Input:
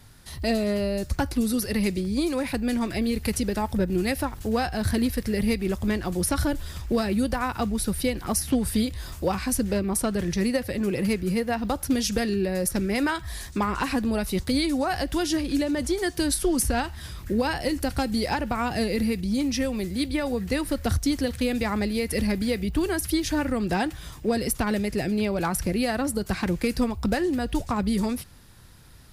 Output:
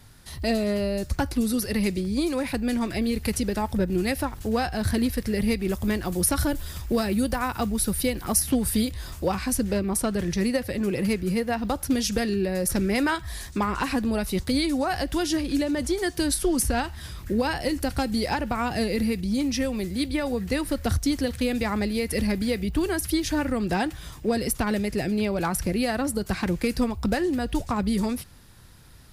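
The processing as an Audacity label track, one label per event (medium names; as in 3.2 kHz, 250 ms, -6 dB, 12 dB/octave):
5.680000	8.910000	treble shelf 11 kHz +10.5 dB
12.690000	13.150000	level flattener amount 50%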